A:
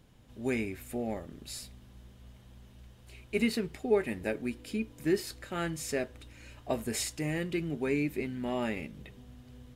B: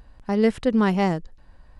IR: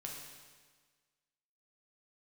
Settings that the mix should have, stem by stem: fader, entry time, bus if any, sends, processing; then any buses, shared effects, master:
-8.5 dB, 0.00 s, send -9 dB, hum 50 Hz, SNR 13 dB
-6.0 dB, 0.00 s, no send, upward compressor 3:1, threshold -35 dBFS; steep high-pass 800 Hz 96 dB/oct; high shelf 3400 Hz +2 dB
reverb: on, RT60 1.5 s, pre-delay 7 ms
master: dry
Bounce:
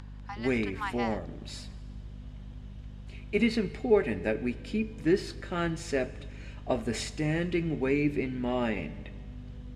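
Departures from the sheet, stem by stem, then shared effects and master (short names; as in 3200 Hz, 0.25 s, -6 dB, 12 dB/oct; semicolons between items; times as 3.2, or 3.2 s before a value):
stem A -8.5 dB -> +2.0 dB; master: extra air absorption 91 m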